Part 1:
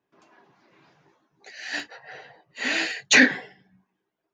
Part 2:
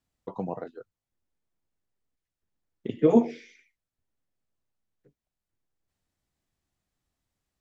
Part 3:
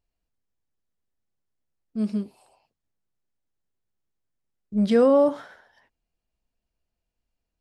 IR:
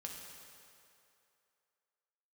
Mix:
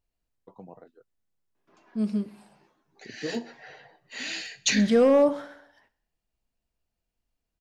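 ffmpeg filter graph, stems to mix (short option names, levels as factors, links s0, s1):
-filter_complex "[0:a]acrossover=split=180|3000[s0][s1][s2];[s1]acompressor=threshold=0.00794:ratio=2.5[s3];[s0][s3][s2]amix=inputs=3:normalize=0,adelay=1550,volume=0.708,asplit=2[s4][s5];[s5]volume=0.0944[s6];[1:a]adelay=200,volume=0.211[s7];[2:a]asoftclip=type=hard:threshold=0.266,volume=0.891,asplit=2[s8][s9];[s9]volume=0.106[s10];[s6][s10]amix=inputs=2:normalize=0,aecho=0:1:63|126|189|252|315|378|441|504:1|0.56|0.314|0.176|0.0983|0.0551|0.0308|0.0173[s11];[s4][s7][s8][s11]amix=inputs=4:normalize=0"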